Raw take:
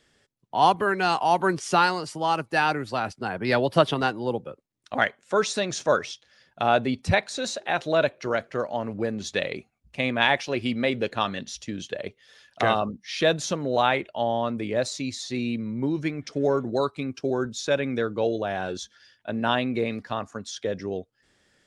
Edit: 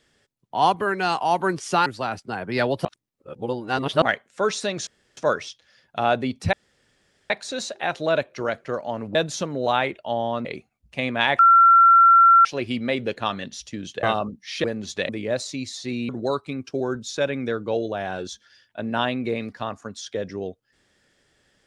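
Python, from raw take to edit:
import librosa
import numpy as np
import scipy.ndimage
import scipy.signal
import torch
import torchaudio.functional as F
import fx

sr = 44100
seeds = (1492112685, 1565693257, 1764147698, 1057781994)

y = fx.edit(x, sr, fx.cut(start_s=1.86, length_s=0.93),
    fx.reverse_span(start_s=3.78, length_s=1.17),
    fx.insert_room_tone(at_s=5.8, length_s=0.3),
    fx.insert_room_tone(at_s=7.16, length_s=0.77),
    fx.swap(start_s=9.01, length_s=0.45, other_s=13.25, other_length_s=1.3),
    fx.insert_tone(at_s=10.4, length_s=1.06, hz=1360.0, db=-9.5),
    fx.cut(start_s=11.98, length_s=0.66),
    fx.cut(start_s=15.55, length_s=1.04), tone=tone)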